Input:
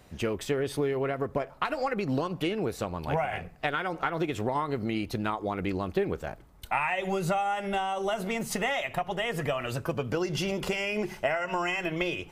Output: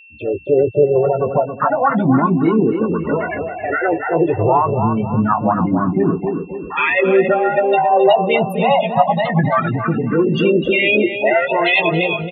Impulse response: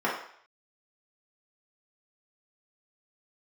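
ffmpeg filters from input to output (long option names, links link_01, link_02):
-filter_complex "[0:a]alimiter=limit=-23.5dB:level=0:latency=1:release=15,afftfilt=real='re*gte(hypot(re,im),0.0708)':imag='im*gte(hypot(re,im),0.0708)':win_size=1024:overlap=0.75,adynamicequalizer=threshold=0.00316:dfrequency=1300:dqfactor=4.9:tfrequency=1300:tqfactor=4.9:attack=5:release=100:ratio=0.375:range=1.5:mode=boostabove:tftype=bell,highpass=110,dynaudnorm=framelen=110:gausssize=7:maxgain=15.5dB,aemphasis=mode=production:type=cd,asplit=2[link_01][link_02];[link_02]adelay=18,volume=-8dB[link_03];[link_01][link_03]amix=inputs=2:normalize=0,asplit=2[link_04][link_05];[link_05]adelay=273,lowpass=frequency=2100:poles=1,volume=-7dB,asplit=2[link_06][link_07];[link_07]adelay=273,lowpass=frequency=2100:poles=1,volume=0.4,asplit=2[link_08][link_09];[link_09]adelay=273,lowpass=frequency=2100:poles=1,volume=0.4,asplit=2[link_10][link_11];[link_11]adelay=273,lowpass=frequency=2100:poles=1,volume=0.4,asplit=2[link_12][link_13];[link_13]adelay=273,lowpass=frequency=2100:poles=1,volume=0.4[link_14];[link_04][link_06][link_08][link_10][link_12][link_14]amix=inputs=6:normalize=0,asplit=2[link_15][link_16];[link_16]asetrate=58866,aresample=44100,atempo=0.749154,volume=-11dB[link_17];[link_15][link_17]amix=inputs=2:normalize=0,aeval=exprs='val(0)+0.00501*sin(2*PI*2700*n/s)':channel_layout=same,asplit=2[link_18][link_19];[link_19]afreqshift=0.27[link_20];[link_18][link_20]amix=inputs=2:normalize=1,volume=4.5dB"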